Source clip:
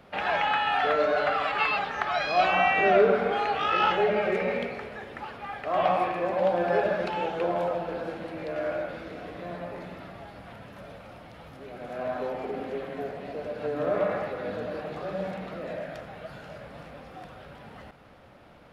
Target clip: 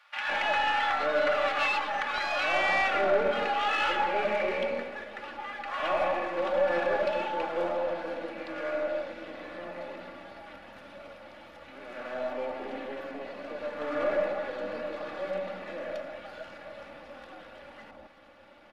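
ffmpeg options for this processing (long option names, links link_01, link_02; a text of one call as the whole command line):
ffmpeg -i in.wav -filter_complex "[0:a]aeval=exprs='if(lt(val(0),0),0.447*val(0),val(0))':channel_layout=same,aecho=1:1:3.5:0.6,acrossover=split=1000[link_01][link_02];[link_01]adelay=160[link_03];[link_03][link_02]amix=inputs=2:normalize=0,asplit=2[link_04][link_05];[link_05]highpass=frequency=720:poles=1,volume=14dB,asoftclip=type=tanh:threshold=-9dB[link_06];[link_04][link_06]amix=inputs=2:normalize=0,lowpass=frequency=3200:poles=1,volume=-6dB,volume=-5dB" out.wav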